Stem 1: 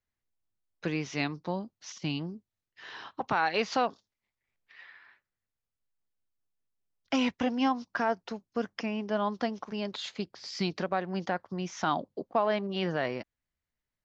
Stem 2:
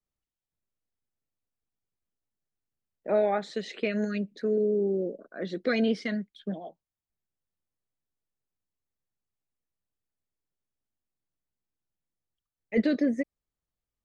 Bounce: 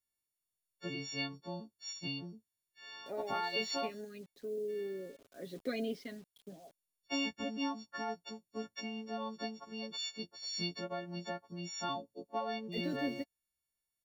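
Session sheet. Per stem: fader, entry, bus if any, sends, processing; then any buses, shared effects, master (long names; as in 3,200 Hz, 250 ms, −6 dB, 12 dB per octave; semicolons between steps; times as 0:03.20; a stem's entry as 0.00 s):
−9.0 dB, 0.00 s, no send, every partial snapped to a pitch grid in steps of 4 semitones
−6.0 dB, 0.00 s, no send, comb filter 7.3 ms, depth 55%; bit reduction 8 bits; automatic ducking −9 dB, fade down 1.50 s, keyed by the first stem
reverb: not used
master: parametric band 1,500 Hz −7 dB 1.3 octaves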